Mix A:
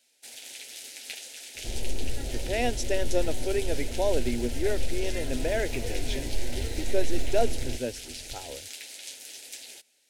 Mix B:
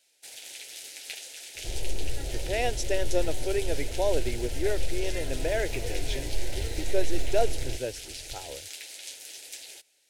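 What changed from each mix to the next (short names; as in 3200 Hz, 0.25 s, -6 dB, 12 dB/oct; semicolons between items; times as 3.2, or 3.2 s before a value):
master: add bell 240 Hz -13.5 dB 0.22 oct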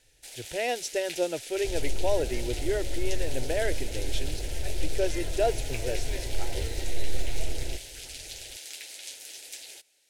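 speech: entry -1.95 s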